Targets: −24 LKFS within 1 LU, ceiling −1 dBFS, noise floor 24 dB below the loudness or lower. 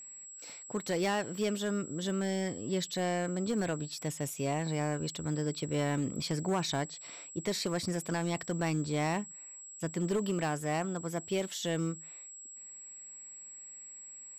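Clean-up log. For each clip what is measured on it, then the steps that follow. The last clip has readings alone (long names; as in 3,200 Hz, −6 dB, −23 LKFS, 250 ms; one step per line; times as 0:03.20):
share of clipped samples 1.2%; peaks flattened at −25.0 dBFS; interfering tone 7,700 Hz; level of the tone −46 dBFS; integrated loudness −34.0 LKFS; sample peak −25.0 dBFS; target loudness −24.0 LKFS
→ clipped peaks rebuilt −25 dBFS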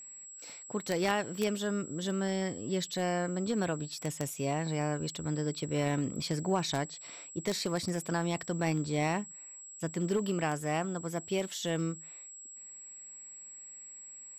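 share of clipped samples 0.0%; interfering tone 7,700 Hz; level of the tone −46 dBFS
→ notch filter 7,700 Hz, Q 30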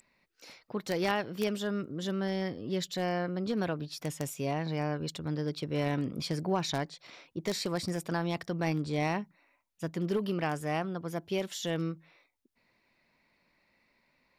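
interfering tone none found; integrated loudness −33.5 LKFS; sample peak −16.0 dBFS; target loudness −24.0 LKFS
→ level +9.5 dB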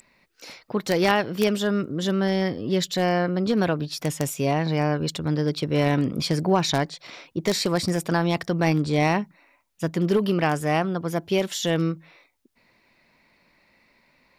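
integrated loudness −24.0 LKFS; sample peak −6.5 dBFS; background noise floor −65 dBFS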